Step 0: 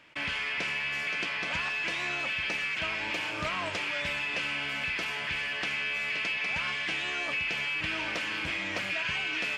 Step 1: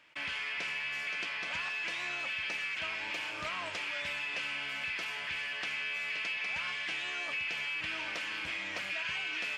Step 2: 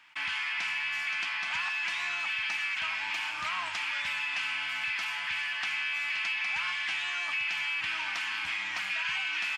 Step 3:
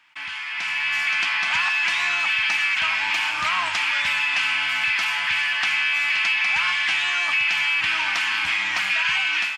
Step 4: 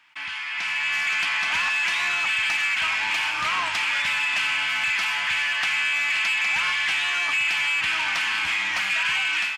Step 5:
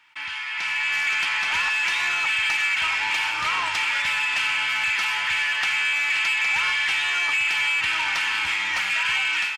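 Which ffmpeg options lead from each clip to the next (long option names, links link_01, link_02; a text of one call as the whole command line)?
ffmpeg -i in.wav -af "lowshelf=frequency=500:gain=-8,volume=-4dB" out.wav
ffmpeg -i in.wav -af "firequalizer=gain_entry='entry(250,0);entry(500,-14);entry(810,10);entry(2500,8)':delay=0.05:min_phase=1,volume=-4dB" out.wav
ffmpeg -i in.wav -af "dynaudnorm=framelen=470:gausssize=3:maxgain=10.5dB" out.wav
ffmpeg -i in.wav -af "asoftclip=type=tanh:threshold=-17dB" out.wav
ffmpeg -i in.wav -af "aecho=1:1:2.2:0.35" out.wav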